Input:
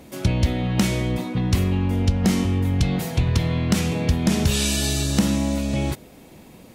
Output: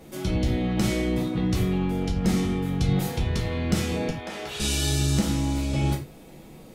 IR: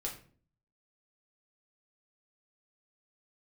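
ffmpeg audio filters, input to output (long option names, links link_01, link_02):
-filter_complex "[0:a]alimiter=limit=-13dB:level=0:latency=1:release=116,asettb=1/sr,asplit=3[link_01][link_02][link_03];[link_01]atrim=end=4.094[link_04];[link_02]atrim=start=4.09:end=4.6,asetpts=PTS-STARTPTS,afade=type=in:duration=0.004:curve=qsin,afade=type=out:start_time=0.506:duration=0.004:curve=qsin,acrossover=split=450 3500:gain=0.0708 1 0.251[link_05][link_06][link_07];[link_05][link_06][link_07]amix=inputs=3:normalize=0[link_08];[link_03]atrim=start=4.596[link_09];[link_04][link_08]acrossfade=duration=0.004:curve1=hsin:curve2=qsin[link_10];[link_10][link_09]acrossfade=duration=0.004:curve1=qsin:curve2=hsin[link_11];[1:a]atrim=start_sample=2205,afade=type=out:start_time=0.16:duration=0.01,atrim=end_sample=7497[link_12];[link_11][link_12]afir=irnorm=-1:irlink=0,volume=-2dB"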